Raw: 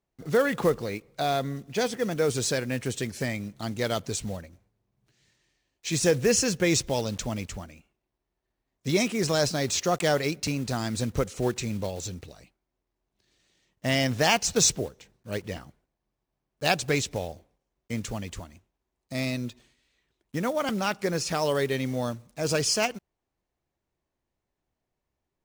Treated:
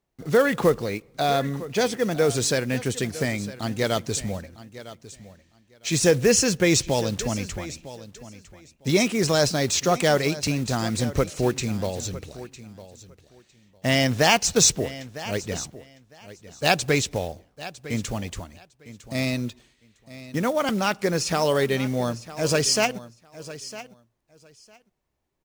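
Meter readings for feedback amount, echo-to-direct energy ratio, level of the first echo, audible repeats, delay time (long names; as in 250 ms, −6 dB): 17%, −16.0 dB, −16.0 dB, 2, 955 ms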